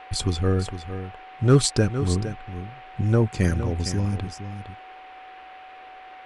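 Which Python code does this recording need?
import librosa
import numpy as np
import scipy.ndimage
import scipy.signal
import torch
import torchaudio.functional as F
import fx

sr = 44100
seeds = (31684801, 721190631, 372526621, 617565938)

y = fx.fix_declip(x, sr, threshold_db=-7.0)
y = fx.notch(y, sr, hz=750.0, q=30.0)
y = fx.noise_reduce(y, sr, print_start_s=5.34, print_end_s=5.84, reduce_db=25.0)
y = fx.fix_echo_inverse(y, sr, delay_ms=460, level_db=-11.0)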